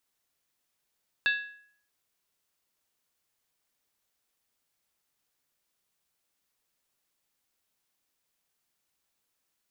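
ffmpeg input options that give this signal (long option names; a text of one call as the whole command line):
ffmpeg -f lavfi -i "aevalsrc='0.0891*pow(10,-3*t/0.6)*sin(2*PI*1670*t)+0.0501*pow(10,-3*t/0.475)*sin(2*PI*2662*t)+0.0282*pow(10,-3*t/0.411)*sin(2*PI*3567.1*t)+0.0158*pow(10,-3*t/0.396)*sin(2*PI*3834.3*t)+0.00891*pow(10,-3*t/0.368)*sin(2*PI*4430.5*t)':duration=0.63:sample_rate=44100" out.wav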